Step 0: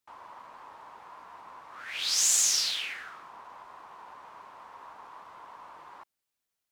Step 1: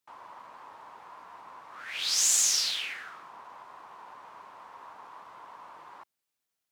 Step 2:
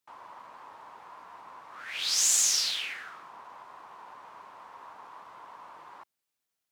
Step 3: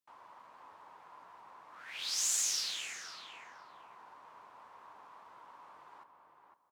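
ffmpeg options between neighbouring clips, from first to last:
ffmpeg -i in.wav -af "highpass=81" out.wav
ffmpeg -i in.wav -af anull out.wav
ffmpeg -i in.wav -filter_complex "[0:a]asplit=2[link_01][link_02];[link_02]adelay=506,lowpass=frequency=1800:poles=1,volume=-5dB,asplit=2[link_03][link_04];[link_04]adelay=506,lowpass=frequency=1800:poles=1,volume=0.27,asplit=2[link_05][link_06];[link_06]adelay=506,lowpass=frequency=1800:poles=1,volume=0.27,asplit=2[link_07][link_08];[link_08]adelay=506,lowpass=frequency=1800:poles=1,volume=0.27[link_09];[link_01][link_03][link_05][link_07][link_09]amix=inputs=5:normalize=0,volume=-8dB" out.wav

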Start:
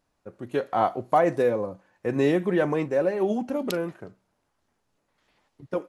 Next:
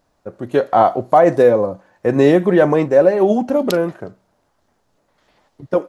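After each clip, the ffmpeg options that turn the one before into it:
ffmpeg -i in.wav -af "equalizer=frequency=630:width_type=o:width=0.67:gain=4,equalizer=frequency=2500:width_type=o:width=0.67:gain=-4,equalizer=frequency=10000:width_type=o:width=0.67:gain=-4,alimiter=level_in=10.5dB:limit=-1dB:release=50:level=0:latency=1,volume=-1dB" out.wav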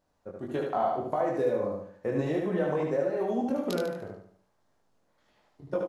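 ffmpeg -i in.wav -filter_complex "[0:a]acompressor=threshold=-15dB:ratio=6,flanger=delay=19.5:depth=2.9:speed=1.7,asplit=2[link_01][link_02];[link_02]aecho=0:1:74|148|222|296|370:0.708|0.283|0.113|0.0453|0.0181[link_03];[link_01][link_03]amix=inputs=2:normalize=0,volume=-8dB" out.wav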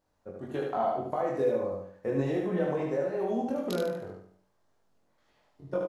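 ffmpeg -i in.wav -filter_complex "[0:a]asplit=2[link_01][link_02];[link_02]adelay=22,volume=-5dB[link_03];[link_01][link_03]amix=inputs=2:normalize=0,volume=-2.5dB" out.wav

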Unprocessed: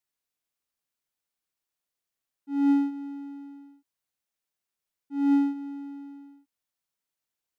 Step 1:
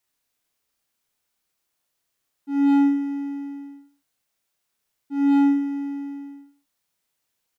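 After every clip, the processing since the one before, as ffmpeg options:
ffmpeg -i in.wav -af "aecho=1:1:30|64.5|104.2|149.8|202.3:0.631|0.398|0.251|0.158|0.1,aeval=exprs='0.335*sin(PI/2*2.82*val(0)/0.335)':channel_layout=same,volume=-5dB" out.wav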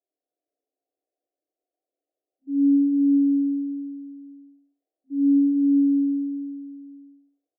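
ffmpeg -i in.wav -af "afftfilt=real='re*between(b*sr/4096,260,780)':imag='im*between(b*sr/4096,260,780)':win_size=4096:overlap=0.75,aecho=1:1:280|490|647.5|765.6|854.2:0.631|0.398|0.251|0.158|0.1" out.wav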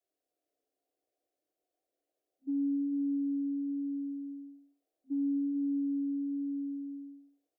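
ffmpeg -i in.wav -af "adynamicequalizer=threshold=0.0251:dfrequency=280:dqfactor=2.4:tfrequency=280:tqfactor=2.4:attack=5:release=100:ratio=0.375:range=3:mode=cutabove:tftype=bell,acompressor=threshold=-34dB:ratio=4,volume=1.5dB" out.wav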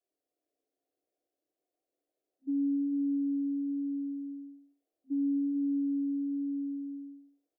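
ffmpeg -i in.wav -af "equalizer=frequency=290:width=0.59:gain=6.5,volume=-5dB" out.wav

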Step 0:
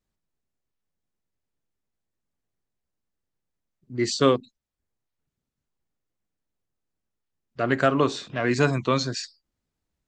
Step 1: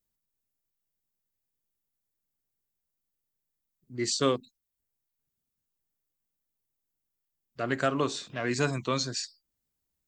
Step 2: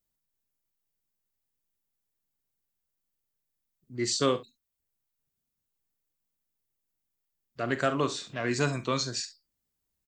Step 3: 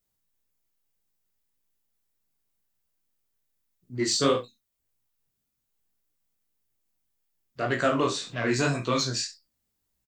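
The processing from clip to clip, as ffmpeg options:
ffmpeg -i in.wav -af "aemphasis=mode=production:type=50fm,volume=-6.5dB" out.wav
ffmpeg -i in.wav -af "aecho=1:1:42|69:0.224|0.141" out.wav
ffmpeg -i in.wav -filter_complex "[0:a]flanger=delay=16.5:depth=7.4:speed=1.8,asplit=2[link_01][link_02];[link_02]asoftclip=type=tanh:threshold=-27dB,volume=-5dB[link_03];[link_01][link_03]amix=inputs=2:normalize=0,asplit=2[link_04][link_05];[link_05]adelay=33,volume=-12dB[link_06];[link_04][link_06]amix=inputs=2:normalize=0,volume=3dB" out.wav

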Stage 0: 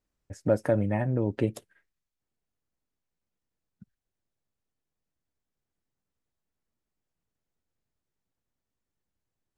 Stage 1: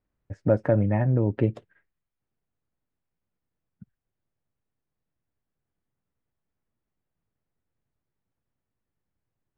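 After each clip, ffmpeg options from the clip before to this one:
ffmpeg -i in.wav -af "lowpass=2300,equalizer=frequency=120:width=1.4:gain=4.5,volume=2dB" out.wav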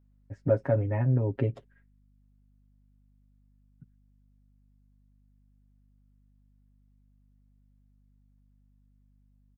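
ffmpeg -i in.wav -af "aecho=1:1:7.4:0.92,aeval=exprs='val(0)+0.00178*(sin(2*PI*50*n/s)+sin(2*PI*2*50*n/s)/2+sin(2*PI*3*50*n/s)/3+sin(2*PI*4*50*n/s)/4+sin(2*PI*5*50*n/s)/5)':channel_layout=same,volume=-7dB" out.wav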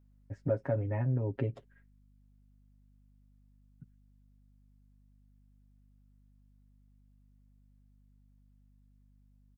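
ffmpeg -i in.wav -af "acompressor=threshold=-37dB:ratio=1.5" out.wav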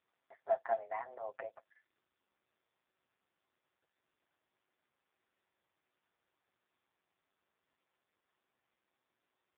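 ffmpeg -i in.wav -af "highpass=frequency=550:width_type=q:width=0.5412,highpass=frequency=550:width_type=q:width=1.307,lowpass=frequency=2000:width_type=q:width=0.5176,lowpass=frequency=2000:width_type=q:width=0.7071,lowpass=frequency=2000:width_type=q:width=1.932,afreqshift=120,volume=4dB" -ar 8000 -c:a libopencore_amrnb -b:a 5150 out.amr

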